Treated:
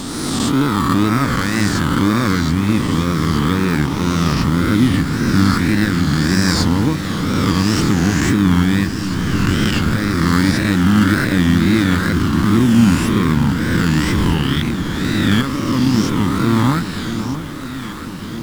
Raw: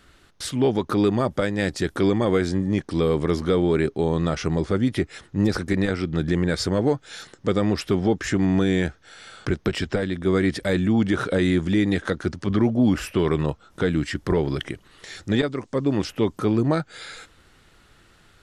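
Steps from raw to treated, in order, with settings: reverse spectral sustain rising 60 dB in 2.40 s; high-order bell 530 Hz -16 dB 1.3 oct; added noise pink -45 dBFS; in parallel at -5.5 dB: sample-rate reducer 3.2 kHz; on the sum: wow and flutter 140 cents; echo whose repeats swap between lows and highs 628 ms, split 1.1 kHz, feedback 80%, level -9 dB; trim +2.5 dB

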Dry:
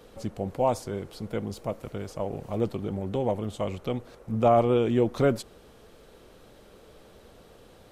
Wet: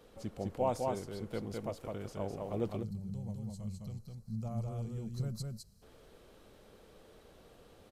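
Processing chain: delay 207 ms -3 dB; time-frequency box 2.83–5.82 s, 230–3900 Hz -20 dB; trim -8 dB

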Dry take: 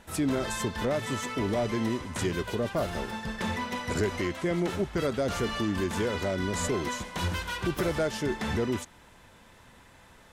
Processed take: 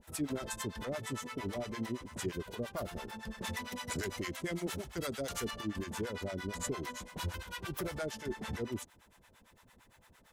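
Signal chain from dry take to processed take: crackle 210 per s -58 dBFS; treble shelf 11 kHz +10 dB; harmonic tremolo 8.8 Hz, depth 100%, crossover 600 Hz; 3.44–5.51 s: treble shelf 3.3 kHz +8.5 dB; trim -5 dB

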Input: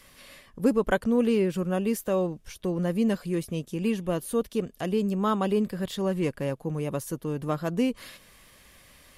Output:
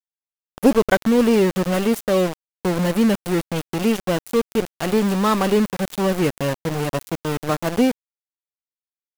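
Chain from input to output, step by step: Chebyshev shaper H 2 -11 dB, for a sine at -9.5 dBFS; small samples zeroed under -29.5 dBFS; trim +8 dB

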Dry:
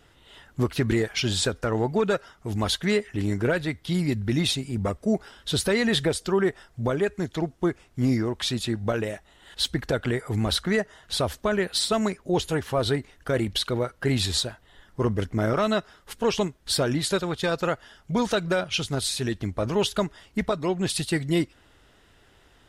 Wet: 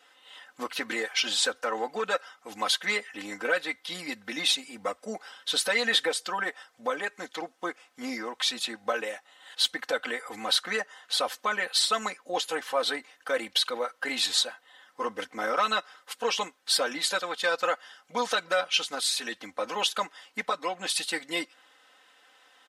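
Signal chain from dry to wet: high-pass 710 Hz 12 dB/octave; treble shelf 7.6 kHz -5 dB; comb 3.9 ms, depth 89%

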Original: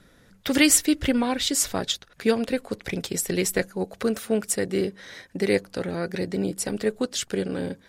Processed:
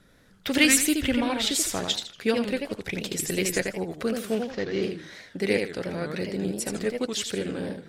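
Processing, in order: 4.31–4.83 s: CVSD coder 32 kbps; dynamic bell 2.7 kHz, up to +5 dB, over -43 dBFS, Q 1.4; modulated delay 82 ms, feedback 32%, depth 217 cents, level -5 dB; trim -3.5 dB

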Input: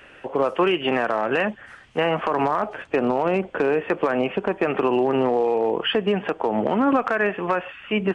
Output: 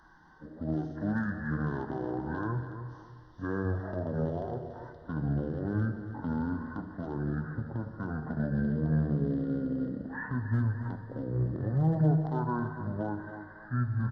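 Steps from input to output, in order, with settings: coarse spectral quantiser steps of 15 dB; tone controls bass +14 dB, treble +4 dB; harmonic-percussive split percussive -9 dB; tilt shelf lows -3.5 dB, about 1.4 kHz; hard clipper -11 dBFS, distortion -34 dB; Butterworth band-stop 4.2 kHz, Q 2.2; feedback comb 270 Hz, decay 0.78 s, mix 70%; feedback delay 164 ms, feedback 31%, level -11 dB; Schroeder reverb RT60 1.3 s, combs from 33 ms, DRR 12 dB; speed mistake 78 rpm record played at 45 rpm

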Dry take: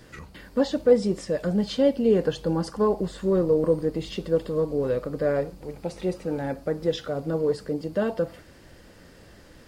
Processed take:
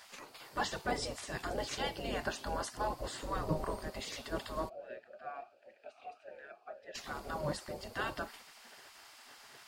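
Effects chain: spectral gate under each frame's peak -15 dB weak; 4.68–6.94 s: talking filter a-e 1.1 Hz -> 2.1 Hz; trim +2 dB

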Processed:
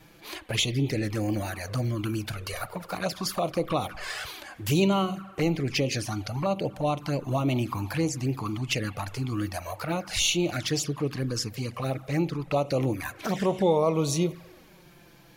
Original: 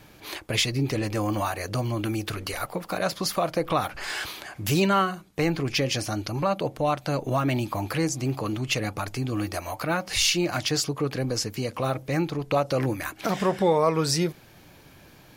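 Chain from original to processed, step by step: spring tank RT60 1.6 s, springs 41 ms, chirp 65 ms, DRR 16 dB; touch-sensitive flanger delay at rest 6.8 ms, full sweep at -21 dBFS

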